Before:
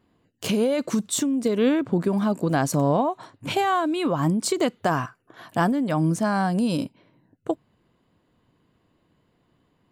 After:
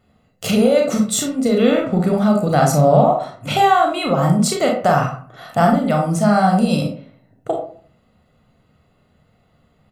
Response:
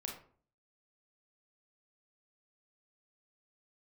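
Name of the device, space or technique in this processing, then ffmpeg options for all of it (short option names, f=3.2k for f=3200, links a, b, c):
microphone above a desk: -filter_complex "[0:a]aecho=1:1:1.5:0.65[a];[1:a]atrim=start_sample=2205[b];[a][b]afir=irnorm=-1:irlink=0,volume=8dB"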